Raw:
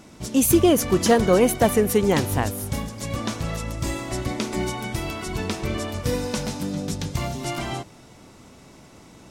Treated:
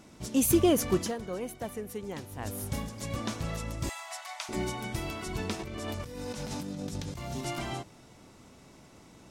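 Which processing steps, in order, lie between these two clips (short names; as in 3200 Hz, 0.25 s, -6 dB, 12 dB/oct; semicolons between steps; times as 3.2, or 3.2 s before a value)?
0.95–2.55 dip -12.5 dB, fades 0.17 s; 3.89–4.49 steep high-pass 650 Hz 96 dB/oct; 5.59–7.41 negative-ratio compressor -31 dBFS, ratio -1; gain -6.5 dB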